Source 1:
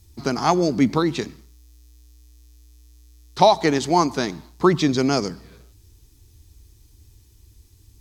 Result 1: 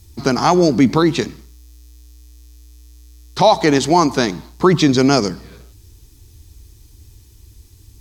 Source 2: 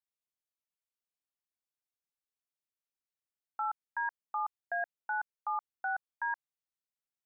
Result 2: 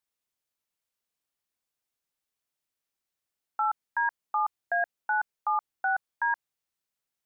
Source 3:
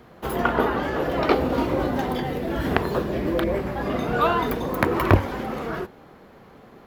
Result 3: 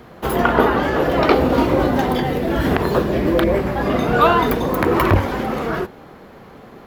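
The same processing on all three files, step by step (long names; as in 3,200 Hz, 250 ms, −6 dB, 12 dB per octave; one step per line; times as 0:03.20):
boost into a limiter +8 dB
level −1 dB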